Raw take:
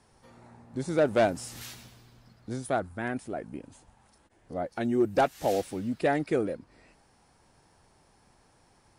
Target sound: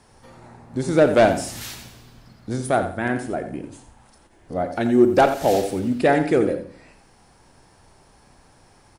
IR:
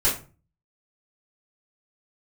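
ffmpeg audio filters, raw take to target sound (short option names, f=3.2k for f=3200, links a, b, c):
-filter_complex "[0:a]aecho=1:1:87|174|261:0.282|0.0761|0.0205,asplit=2[a][b];[1:a]atrim=start_sample=2205,adelay=28[c];[b][c]afir=irnorm=-1:irlink=0,volume=-24dB[d];[a][d]amix=inputs=2:normalize=0,volume=8dB"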